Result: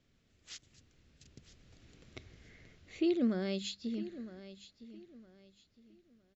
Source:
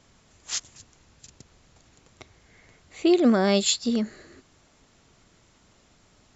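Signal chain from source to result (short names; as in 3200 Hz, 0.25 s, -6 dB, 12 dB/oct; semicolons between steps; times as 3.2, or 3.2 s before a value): Doppler pass-by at 2.21, 8 m/s, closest 4.2 m; bell 930 Hz -14 dB 1.2 oct; notches 50/100/150/200 Hz; in parallel at +1 dB: compressor, threshold -43 dBFS, peak gain reduction 18 dB; on the sum: air absorption 150 m; on a send: feedback echo 0.961 s, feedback 29%, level -15 dB; on the sum: gain -4 dB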